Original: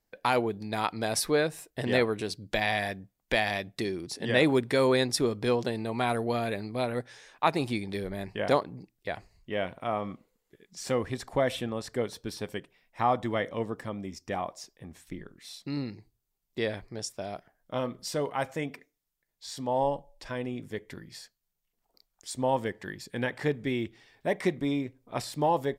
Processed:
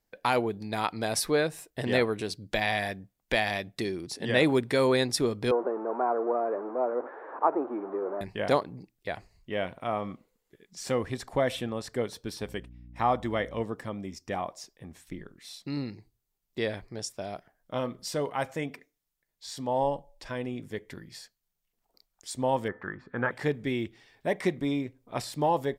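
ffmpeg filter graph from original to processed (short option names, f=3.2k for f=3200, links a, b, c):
-filter_complex "[0:a]asettb=1/sr,asplit=3[a][b][c];[a]atrim=end=5.514[d];[b]atrim=start=5.51:end=8.21,asetpts=PTS-STARTPTS,afade=t=in:d=0.004:c=qsin,afade=t=out:st=2.696:d=0.004:c=qsin,aeval=exprs='val(0)+0.5*0.0355*sgn(val(0))':c=same,asuperpass=centerf=620:order=8:qfactor=0.63[e];[c]atrim=start=8.206[f];[d][e]acrossfade=d=0.004:c1=hsin:c2=qsin[g];[g][f]acrossfade=d=0.004:c1=qsin:c2=hsin,asettb=1/sr,asplit=3[h][i][j];[h]atrim=end=12.414[k];[i]atrim=start=12.41:end=13.62,asetpts=PTS-STARTPTS,afade=t=in:d=0.004:c=qsin,afade=t=out:st=1.206:d=0.004:c=qsin,agate=range=-10dB:threshold=-60dB:ratio=16:release=100:detection=peak,aeval=exprs='val(0)+0.00447*(sin(2*PI*60*n/s)+sin(2*PI*2*60*n/s)/2+sin(2*PI*3*60*n/s)/3+sin(2*PI*4*60*n/s)/4+sin(2*PI*5*60*n/s)/5)':c=same[l];[j]atrim=start=13.616[m];[k][l]acrossfade=d=0.004:c1=hsin:c2=qsin[n];[n][m]acrossfade=d=0.004:c1=qsin:c2=hsin,asettb=1/sr,asplit=3[o][p][q];[o]atrim=end=22.684[r];[p]atrim=start=22.68:end=23.31,asetpts=PTS-STARTPTS,afade=t=in:d=0.004:c=qsin,afade=t=out:st=0.626:d=0.004:c=qsin,lowpass=f=1.3k:t=q:w=7,bandreject=f=252.7:t=h:w=4,bandreject=f=505.4:t=h:w=4,bandreject=f=758.1:t=h:w=4,bandreject=f=1.0108k:t=h:w=4,bandreject=f=1.2635k:t=h:w=4,bandreject=f=1.5162k:t=h:w=4,bandreject=f=1.7689k:t=h:w=4,bandreject=f=2.0216k:t=h:w=4,bandreject=f=2.2743k:t=h:w=4,bandreject=f=2.527k:t=h:w=4,bandreject=f=2.7797k:t=h:w=4,bandreject=f=3.0324k:t=h:w=4,bandreject=f=3.2851k:t=h:w=4,bandreject=f=3.5378k:t=h:w=4,bandreject=f=3.7905k:t=h:w=4,bandreject=f=4.0432k:t=h:w=4,bandreject=f=4.2959k:t=h:w=4[s];[q]atrim=start=23.306[t];[r][s]acrossfade=d=0.004:c1=hsin:c2=qsin[u];[u][t]acrossfade=d=0.004:c1=qsin:c2=hsin"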